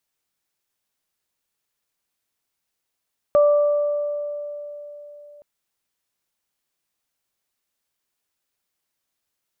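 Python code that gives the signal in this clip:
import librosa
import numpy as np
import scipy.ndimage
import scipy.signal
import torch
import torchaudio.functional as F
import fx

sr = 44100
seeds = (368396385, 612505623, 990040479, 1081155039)

y = fx.additive(sr, length_s=2.07, hz=586.0, level_db=-11, upper_db=(-13.0,), decay_s=3.82, upper_decays_s=(1.94,))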